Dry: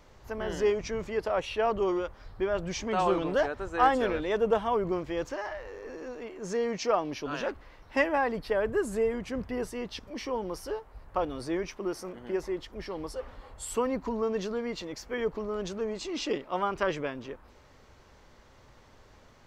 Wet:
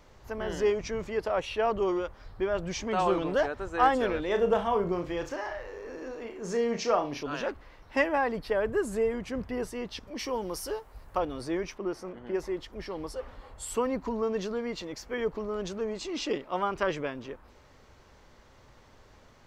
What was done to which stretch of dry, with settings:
4.25–7.23 s: flutter echo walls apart 5.9 m, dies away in 0.26 s
10.19–11.19 s: treble shelf 4.8 kHz +11 dB
11.78–12.35 s: low-pass 3.2 kHz 6 dB/octave

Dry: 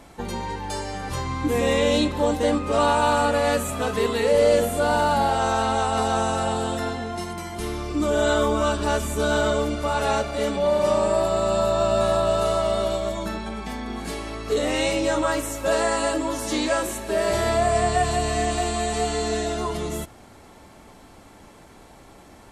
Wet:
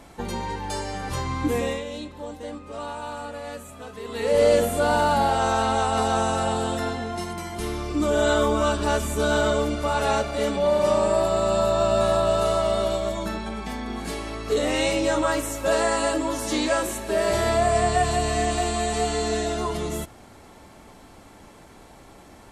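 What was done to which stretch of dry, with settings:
1.46–4.42 s: dip -14 dB, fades 0.38 s

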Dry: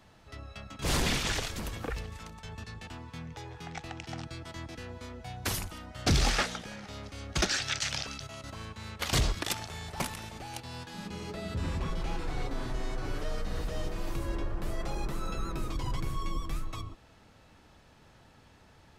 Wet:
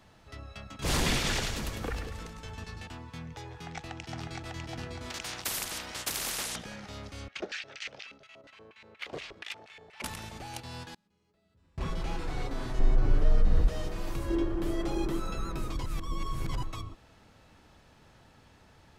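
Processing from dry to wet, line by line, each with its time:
0.77–2.84 s: two-band feedback delay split 500 Hz, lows 184 ms, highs 102 ms, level -7 dB
3.53–4.58 s: echo throw 600 ms, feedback 40%, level -2.5 dB
5.10–6.56 s: spectrum-flattening compressor 10:1
7.28–10.04 s: LFO band-pass square 4.2 Hz 470–2400 Hz
10.86–11.78 s: inverted gate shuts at -35 dBFS, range -34 dB
12.79–13.68 s: tilt EQ -2.5 dB/octave
14.30–15.20 s: small resonant body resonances 330/3200 Hz, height 13 dB
15.86–16.63 s: reverse

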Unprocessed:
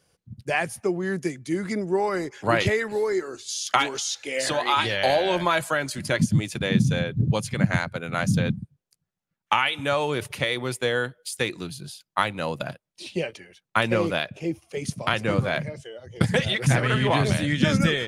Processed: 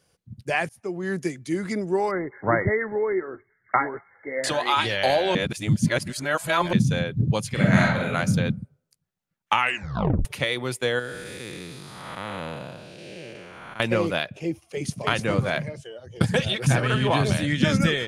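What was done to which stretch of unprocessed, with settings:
0.69–1.12 s: fade in, from -22.5 dB
2.11–4.44 s: brick-wall FIR low-pass 2.2 kHz
5.35–6.73 s: reverse
7.51–8.11 s: reverb throw, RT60 0.8 s, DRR -4 dB
9.59 s: tape stop 0.66 s
10.99–13.80 s: spectral blur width 434 ms
14.50–15.06 s: echo throw 300 ms, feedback 25%, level -4 dB
15.75–17.37 s: band-stop 2 kHz, Q 7.1

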